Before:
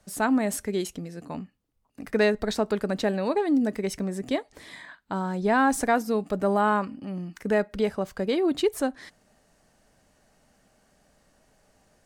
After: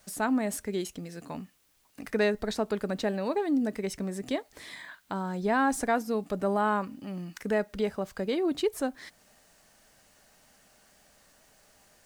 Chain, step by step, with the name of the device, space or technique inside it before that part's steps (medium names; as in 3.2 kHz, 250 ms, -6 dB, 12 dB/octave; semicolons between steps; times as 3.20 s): noise-reduction cassette on a plain deck (tape noise reduction on one side only encoder only; wow and flutter 18 cents; white noise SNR 37 dB); trim -4 dB